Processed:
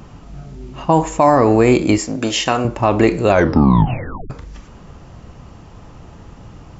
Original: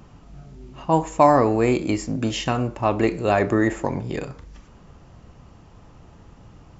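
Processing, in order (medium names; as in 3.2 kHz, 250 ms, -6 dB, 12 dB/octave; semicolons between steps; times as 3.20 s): 1.98–2.65 s: tone controls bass -11 dB, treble +2 dB; 3.28 s: tape stop 1.02 s; loudness maximiser +9.5 dB; trim -1 dB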